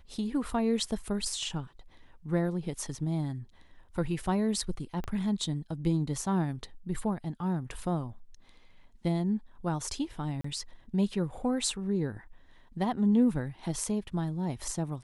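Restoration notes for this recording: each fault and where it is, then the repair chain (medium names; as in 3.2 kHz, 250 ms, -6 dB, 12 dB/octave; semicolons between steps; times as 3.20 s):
5.04 s: pop -24 dBFS
10.41–10.44 s: dropout 34 ms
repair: de-click; interpolate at 10.41 s, 34 ms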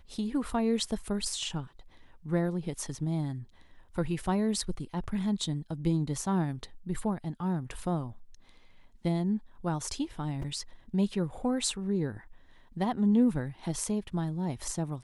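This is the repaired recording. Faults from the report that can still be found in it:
5.04 s: pop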